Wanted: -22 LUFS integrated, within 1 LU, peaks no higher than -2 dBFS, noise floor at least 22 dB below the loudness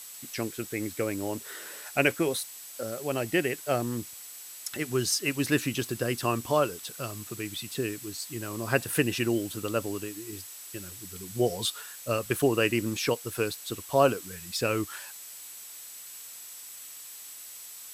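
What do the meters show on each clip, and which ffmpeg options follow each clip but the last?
steady tone 7800 Hz; tone level -48 dBFS; noise floor -45 dBFS; noise floor target -52 dBFS; loudness -30.0 LUFS; peak -8.5 dBFS; loudness target -22.0 LUFS
-> -af "bandreject=f=7.8k:w=30"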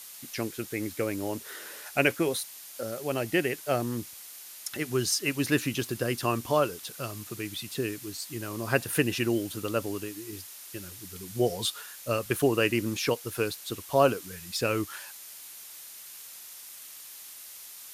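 steady tone none; noise floor -46 dBFS; noise floor target -52 dBFS
-> -af "afftdn=nr=6:nf=-46"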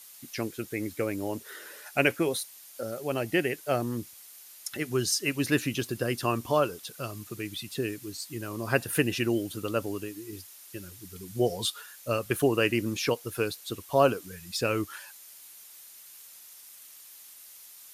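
noise floor -50 dBFS; noise floor target -52 dBFS
-> -af "afftdn=nr=6:nf=-50"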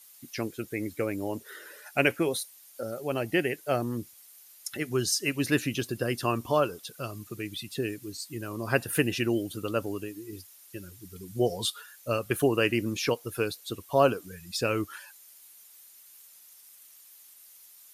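noise floor -54 dBFS; loudness -30.0 LUFS; peak -8.5 dBFS; loudness target -22.0 LUFS
-> -af "volume=8dB,alimiter=limit=-2dB:level=0:latency=1"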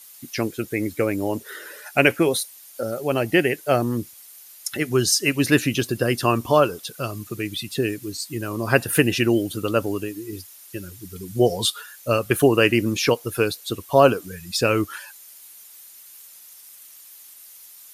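loudness -22.0 LUFS; peak -2.0 dBFS; noise floor -46 dBFS

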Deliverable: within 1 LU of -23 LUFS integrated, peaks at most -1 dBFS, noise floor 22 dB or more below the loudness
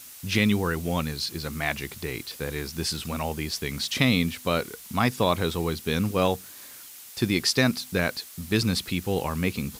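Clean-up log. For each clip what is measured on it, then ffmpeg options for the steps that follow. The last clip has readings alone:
noise floor -45 dBFS; noise floor target -49 dBFS; loudness -26.5 LUFS; peak -7.5 dBFS; loudness target -23.0 LUFS
-> -af "afftdn=nr=6:nf=-45"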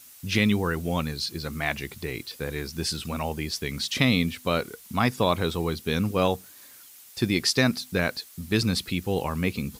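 noise floor -49 dBFS; loudness -26.5 LUFS; peak -7.5 dBFS; loudness target -23.0 LUFS
-> -af "volume=3.5dB"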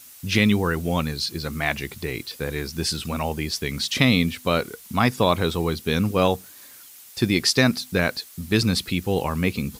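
loudness -23.0 LUFS; peak -4.0 dBFS; noise floor -46 dBFS

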